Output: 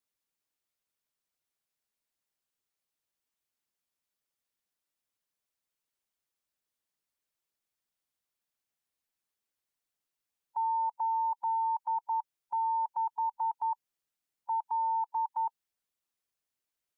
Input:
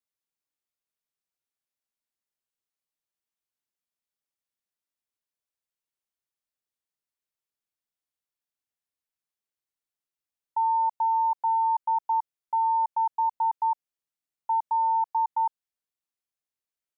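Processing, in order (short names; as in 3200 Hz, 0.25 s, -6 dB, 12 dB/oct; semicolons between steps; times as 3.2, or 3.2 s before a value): harmonic-percussive split percussive +5 dB; limiter -26.5 dBFS, peak gain reduction 8 dB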